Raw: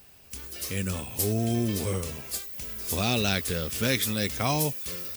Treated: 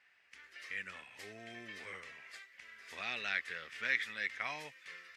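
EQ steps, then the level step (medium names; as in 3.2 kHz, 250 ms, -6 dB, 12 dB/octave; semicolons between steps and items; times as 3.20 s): band-pass filter 1.9 kHz, Q 4.7; distance through air 52 m; +3.5 dB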